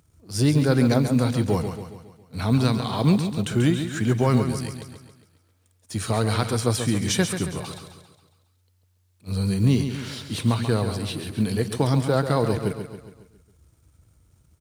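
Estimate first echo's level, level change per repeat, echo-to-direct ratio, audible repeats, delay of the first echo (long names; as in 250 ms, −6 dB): −8.5 dB, −6.0 dB, −7.0 dB, 5, 137 ms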